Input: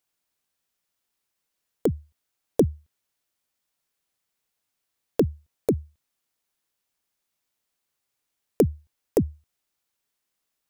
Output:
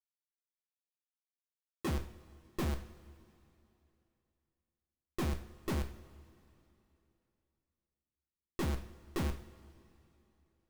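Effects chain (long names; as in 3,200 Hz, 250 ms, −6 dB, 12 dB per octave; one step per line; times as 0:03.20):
formants moved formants −5 semitones
comparator with hysteresis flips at −40 dBFS
coupled-rooms reverb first 0.48 s, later 3 s, from −18 dB, DRR 5.5 dB
level +1 dB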